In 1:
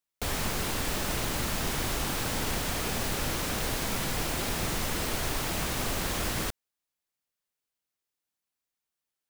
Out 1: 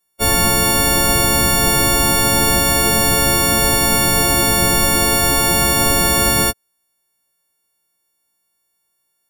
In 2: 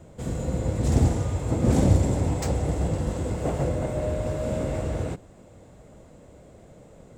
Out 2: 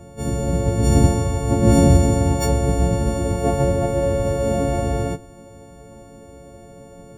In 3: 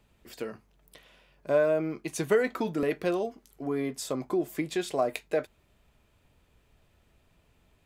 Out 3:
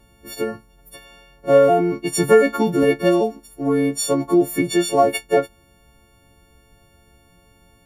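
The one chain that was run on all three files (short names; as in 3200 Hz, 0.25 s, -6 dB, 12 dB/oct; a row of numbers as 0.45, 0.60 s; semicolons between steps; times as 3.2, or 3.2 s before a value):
frequency quantiser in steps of 4 st; tilt shelf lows +6 dB, about 1300 Hz; normalise peaks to -1.5 dBFS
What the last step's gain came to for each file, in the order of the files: +10.0, +2.5, +7.0 dB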